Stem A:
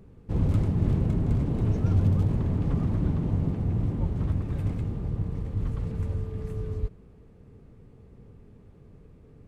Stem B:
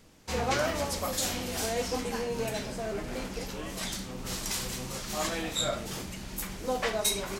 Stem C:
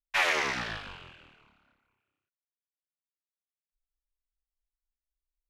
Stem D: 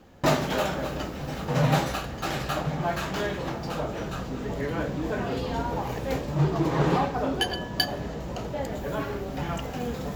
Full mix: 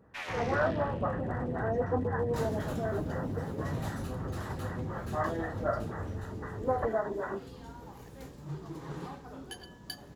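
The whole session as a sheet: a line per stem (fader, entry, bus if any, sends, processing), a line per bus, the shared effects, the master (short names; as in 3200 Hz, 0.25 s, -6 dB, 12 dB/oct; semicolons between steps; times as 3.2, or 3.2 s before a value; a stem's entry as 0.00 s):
-11.0 dB, 0.00 s, no send, HPF 67 Hz; limiter -22.5 dBFS, peak gain reduction 8.5 dB
-0.5 dB, 0.00 s, no send, FFT band-pass 200–2000 Hz; photocell phaser 3.9 Hz
-15.0 dB, 0.00 s, no send, dry
-20.0 dB, 2.10 s, no send, fifteen-band EQ 630 Hz -7 dB, 2500 Hz -5 dB, 10000 Hz +10 dB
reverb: off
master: AGC gain up to 3.5 dB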